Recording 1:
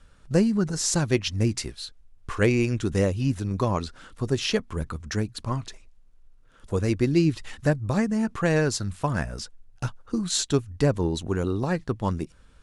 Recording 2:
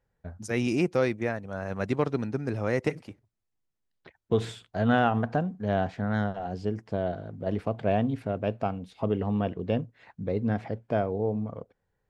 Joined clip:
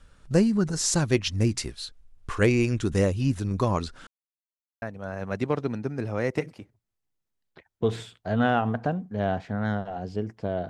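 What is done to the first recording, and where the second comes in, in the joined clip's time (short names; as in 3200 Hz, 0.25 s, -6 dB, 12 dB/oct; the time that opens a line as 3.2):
recording 1
4.07–4.82 mute
4.82 switch to recording 2 from 1.31 s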